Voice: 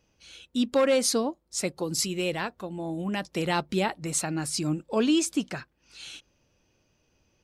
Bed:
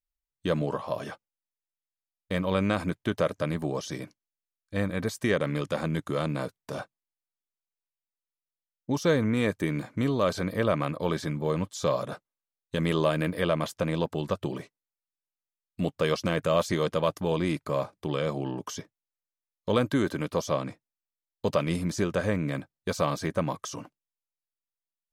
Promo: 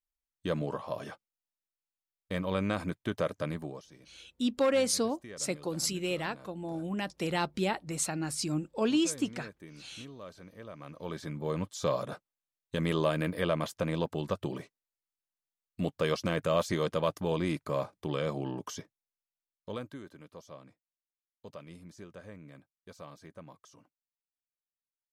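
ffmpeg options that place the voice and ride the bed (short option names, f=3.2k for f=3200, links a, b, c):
-filter_complex "[0:a]adelay=3850,volume=-4dB[a];[1:a]volume=12.5dB,afade=t=out:st=3.48:d=0.39:silence=0.158489,afade=t=in:st=10.76:d=0.96:silence=0.133352,afade=t=out:st=18.65:d=1.36:silence=0.133352[b];[a][b]amix=inputs=2:normalize=0"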